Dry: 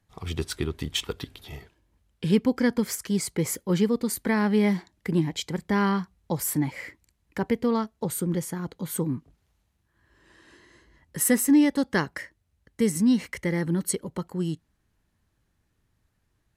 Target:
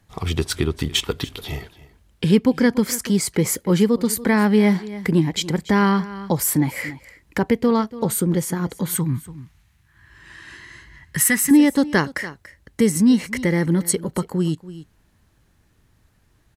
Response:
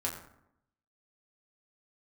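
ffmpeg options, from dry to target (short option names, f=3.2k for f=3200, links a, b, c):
-filter_complex "[0:a]aecho=1:1:286:0.106,asplit=2[a][b];[b]acompressor=threshold=-35dB:ratio=6,volume=3dB[c];[a][c]amix=inputs=2:normalize=0,asettb=1/sr,asplit=3[d][e][f];[d]atrim=end=8.954[g];[e]atrim=start=8.95:end=11.51,asetpts=PTS-STARTPTS,afade=t=in:d=0.004:c=qsin,afade=t=out:st=2.556:d=0.004:c=qsin,equalizer=f=125:t=o:w=1:g=5,equalizer=f=250:t=o:w=1:g=-5,equalizer=f=500:t=o:w=1:g=-12,equalizer=f=2k:t=o:w=1:g=6[h];[f]atrim=start=11.506[i];[g][h]acrossfade=d=0.004:c1=hsin:c2=qsin[j];[j][i]acrossfade=d=0.004:c1=qsin:c2=hsin,volume=4dB"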